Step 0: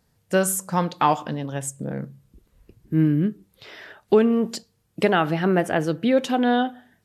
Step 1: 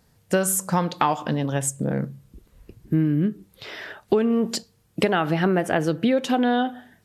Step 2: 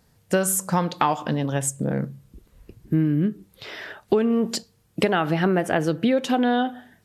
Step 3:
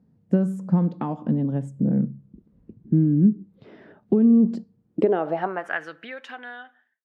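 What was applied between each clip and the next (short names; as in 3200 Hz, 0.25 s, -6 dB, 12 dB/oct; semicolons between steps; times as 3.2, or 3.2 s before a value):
compressor 5:1, threshold -23 dBFS, peak gain reduction 10.5 dB; gain +5.5 dB
nothing audible
ending faded out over 2.32 s; band-pass sweep 210 Hz -> 1700 Hz, 4.82–5.78; gain +7.5 dB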